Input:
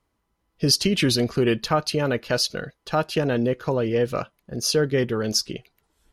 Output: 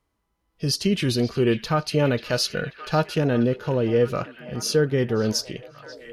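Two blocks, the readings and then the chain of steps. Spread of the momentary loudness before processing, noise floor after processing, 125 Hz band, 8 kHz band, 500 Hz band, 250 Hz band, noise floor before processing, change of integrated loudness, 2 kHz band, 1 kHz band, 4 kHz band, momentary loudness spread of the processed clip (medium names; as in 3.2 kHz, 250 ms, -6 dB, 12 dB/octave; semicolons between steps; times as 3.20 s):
7 LU, -75 dBFS, +2.0 dB, -3.5 dB, +0.5 dB, +0.5 dB, -75 dBFS, -0.5 dB, -1.0 dB, -1.0 dB, -3.5 dB, 9 LU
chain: repeats whose band climbs or falls 538 ms, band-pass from 2.9 kHz, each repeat -0.7 oct, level -11.5 dB; harmonic-percussive split harmonic +8 dB; gain riding within 3 dB 0.5 s; trim -4.5 dB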